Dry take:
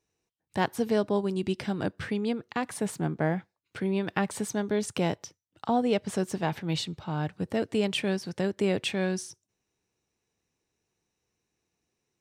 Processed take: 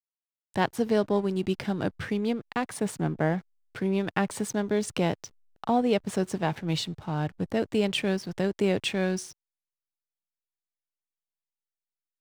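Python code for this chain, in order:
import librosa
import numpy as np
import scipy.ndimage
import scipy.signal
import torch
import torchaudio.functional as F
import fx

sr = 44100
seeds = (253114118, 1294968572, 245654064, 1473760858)

y = fx.backlash(x, sr, play_db=-43.5)
y = y * 10.0 ** (1.5 / 20.0)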